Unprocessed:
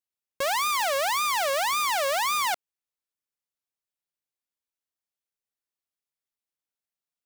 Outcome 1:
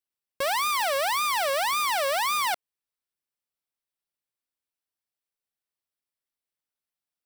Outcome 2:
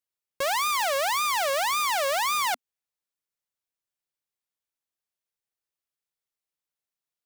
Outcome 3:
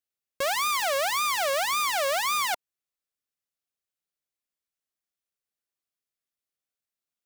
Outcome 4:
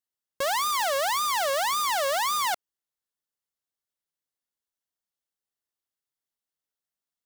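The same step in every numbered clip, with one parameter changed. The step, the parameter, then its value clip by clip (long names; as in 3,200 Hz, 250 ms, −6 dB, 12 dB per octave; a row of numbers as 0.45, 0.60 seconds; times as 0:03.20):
notch filter, centre frequency: 6,700, 250, 920, 2,400 Hertz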